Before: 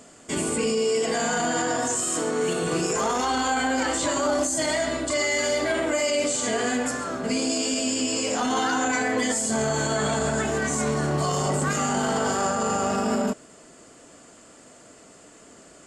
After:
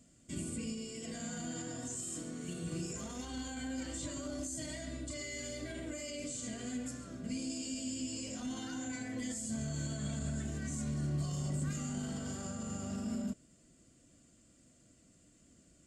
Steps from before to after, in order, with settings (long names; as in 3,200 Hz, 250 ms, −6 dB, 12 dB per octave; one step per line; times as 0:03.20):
guitar amp tone stack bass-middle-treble 10-0-1
notch comb filter 430 Hz
level +6.5 dB